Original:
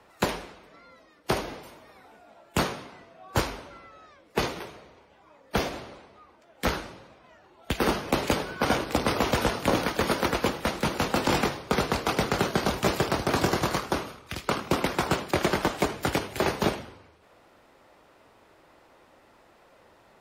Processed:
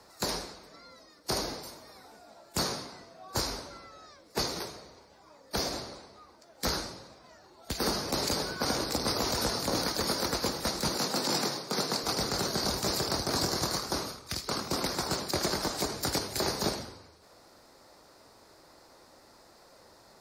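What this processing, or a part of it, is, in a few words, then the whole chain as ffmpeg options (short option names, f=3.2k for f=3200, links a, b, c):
over-bright horn tweeter: -filter_complex "[0:a]asettb=1/sr,asplit=3[a][b][c];[a]atrim=end=10.974[d];[b]atrim=start=10.97:end=12.03,asetpts=PTS-STARTPTS,afade=t=in:d=0.004:c=qsin,afade=t=out:st=1.056:d=0.004:c=qsin,highpass=f=140:w=0.5412,highpass=f=140:w=1.3066[e];[c]atrim=start=12.026[f];[d][e]acrossfade=d=0.004:c1=hsin:c2=qsin[g];[g][f]acrossfade=d=0.004:c1=qsin:c2=hsin,highshelf=f=3.7k:t=q:w=3:g=7,alimiter=limit=-18dB:level=0:latency=1:release=134"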